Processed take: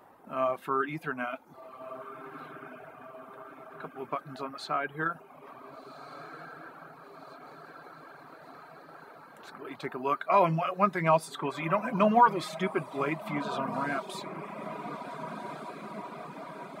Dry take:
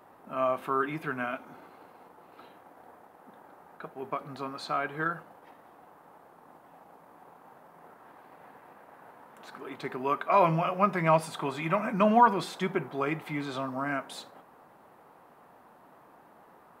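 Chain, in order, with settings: diffused feedback echo 1.546 s, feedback 70%, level -11 dB; reverb removal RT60 0.79 s

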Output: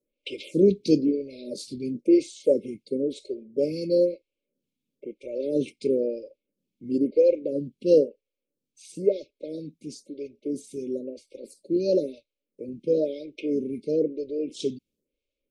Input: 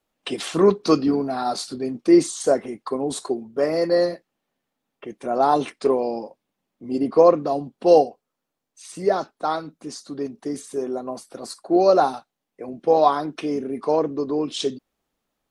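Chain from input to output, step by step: brick-wall FIR band-stop 610–2100 Hz; high shelf 4200 Hz -8 dB; photocell phaser 1 Hz

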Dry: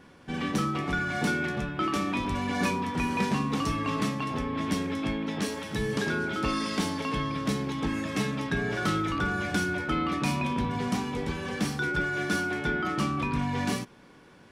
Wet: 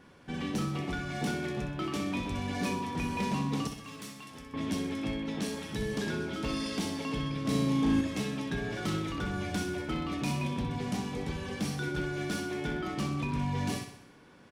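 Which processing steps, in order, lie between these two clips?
hard clip -22 dBFS, distortion -20 dB; 3.67–4.54 pre-emphasis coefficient 0.8; 7.41–8.01 flutter echo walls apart 6.3 m, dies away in 0.68 s; dynamic EQ 1400 Hz, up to -6 dB, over -44 dBFS, Q 1.2; feedback echo 63 ms, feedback 55%, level -8.5 dB; gain -3.5 dB

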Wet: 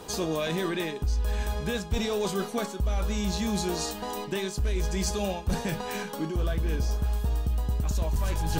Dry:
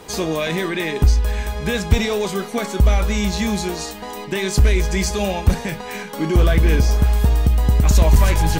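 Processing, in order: reverse; compressor 6:1, threshold -22 dBFS, peak gain reduction 13.5 dB; reverse; bell 2100 Hz -8 dB 0.39 oct; gain -2.5 dB

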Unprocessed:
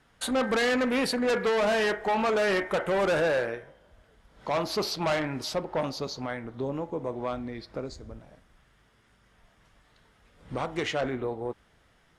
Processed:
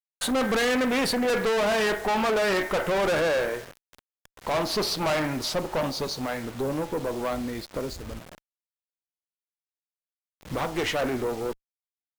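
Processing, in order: requantised 8-bit, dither none; tube stage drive 29 dB, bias 0.45; gain +7.5 dB

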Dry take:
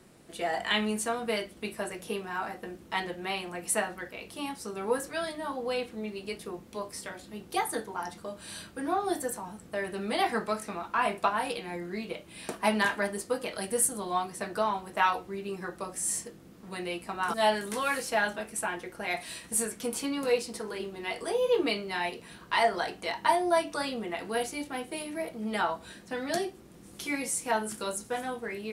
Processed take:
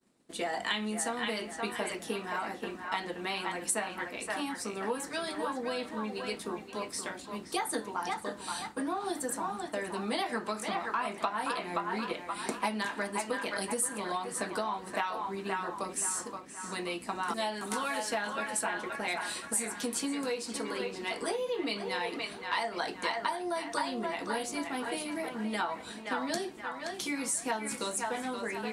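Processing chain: expander -46 dBFS; graphic EQ 250/500/1000/2000/4000/8000 Hz +12/+3/+7/+4/+7/+9 dB; narrowing echo 0.524 s, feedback 46%, band-pass 1400 Hz, level -4 dB; compressor 6:1, threshold -22 dBFS, peak gain reduction 12 dB; harmonic-percussive split harmonic -4 dB; gain -5 dB

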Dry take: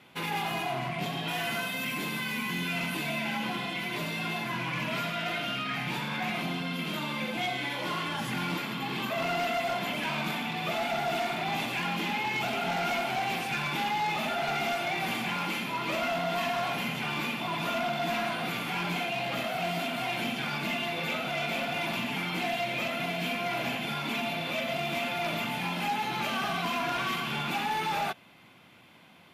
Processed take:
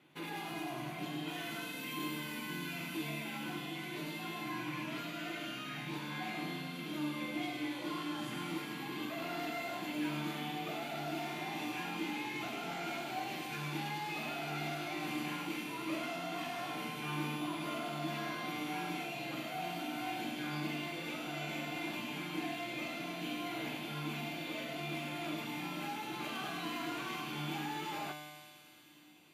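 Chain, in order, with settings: HPF 59 Hz; bell 320 Hz +14 dB 0.34 oct; notch 5300 Hz, Q 19; resonator 150 Hz, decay 1.7 s, mix 90%; thin delay 0.103 s, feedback 85%, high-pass 4500 Hz, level -5 dB; gain +6.5 dB

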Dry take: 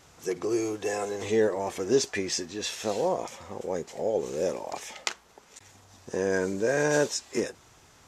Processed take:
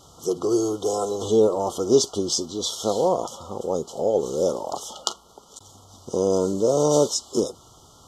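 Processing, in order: FFT band-reject 1400–2900 Hz; gain +6 dB

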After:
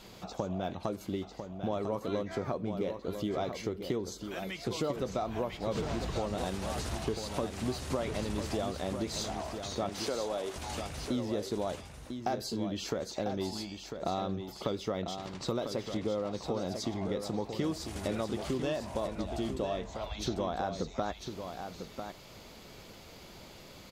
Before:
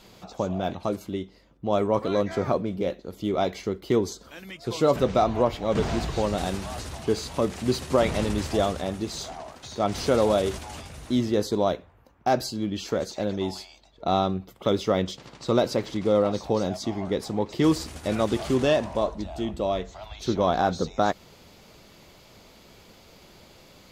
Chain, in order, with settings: compressor 6:1, threshold -31 dBFS, peak gain reduction 14.5 dB; 9.89–10.56 HPF 300 Hz 12 dB/oct; echo 0.998 s -7.5 dB

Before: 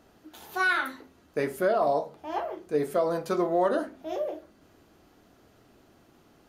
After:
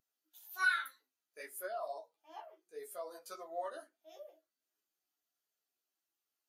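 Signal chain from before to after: differentiator; chorus voices 6, 0.87 Hz, delay 14 ms, depth 4.7 ms; spectral expander 1.5:1; gain +9 dB

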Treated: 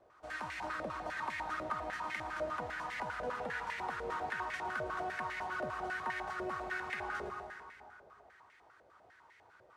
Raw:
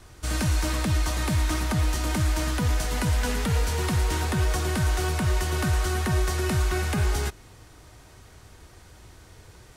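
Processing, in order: plate-style reverb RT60 2.4 s, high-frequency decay 0.7×, pre-delay 0.105 s, DRR 3.5 dB; stepped band-pass 10 Hz 580–2000 Hz

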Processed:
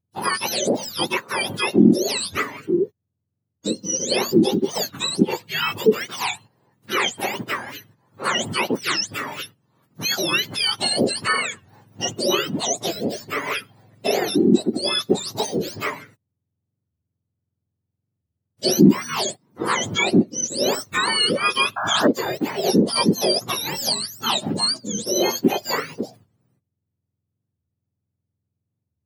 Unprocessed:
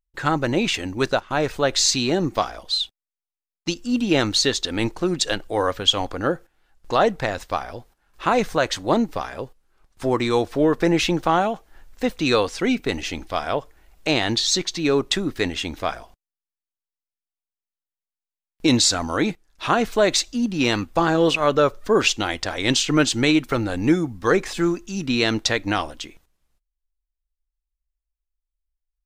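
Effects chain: spectrum mirrored in octaves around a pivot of 1200 Hz; in parallel at +1 dB: compressor, threshold -29 dBFS, peak gain reduction 20.5 dB; 10.12–10.83 on the sum: short-mantissa float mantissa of 4-bit; 21.76–22.08 painted sound noise 600–1700 Hz -23 dBFS; record warp 45 rpm, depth 250 cents; gain -1.5 dB

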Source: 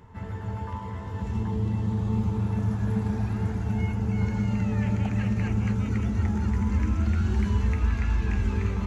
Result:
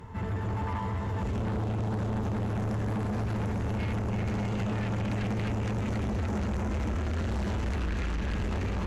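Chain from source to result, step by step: limiter -21.5 dBFS, peak gain reduction 7.5 dB; added harmonics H 5 -9 dB, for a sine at -21.5 dBFS; gain -3 dB

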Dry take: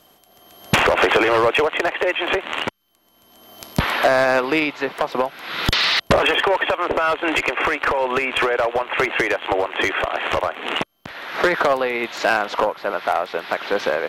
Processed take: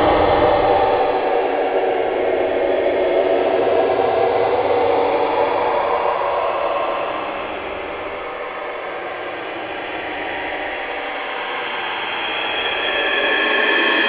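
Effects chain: nonlinear frequency compression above 3300 Hz 4:1; spring tank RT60 3.7 s, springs 52 ms, chirp 65 ms, DRR 9 dB; Paulstretch 49×, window 0.05 s, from 9.52; gain +2.5 dB

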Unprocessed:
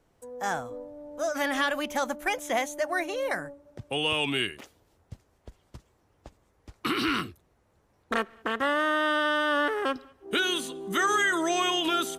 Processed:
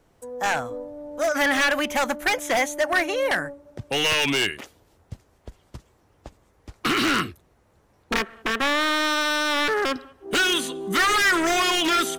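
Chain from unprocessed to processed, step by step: wavefolder -23 dBFS; dynamic EQ 1900 Hz, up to +5 dB, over -44 dBFS, Q 1.3; gain +6 dB

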